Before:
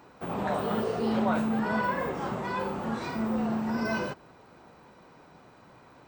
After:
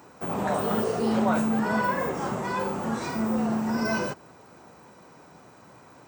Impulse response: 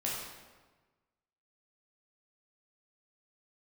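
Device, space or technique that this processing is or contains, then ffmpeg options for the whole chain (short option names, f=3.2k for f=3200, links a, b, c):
budget condenser microphone: -af "highpass=66,highshelf=f=5.1k:t=q:w=1.5:g=6.5,volume=3dB"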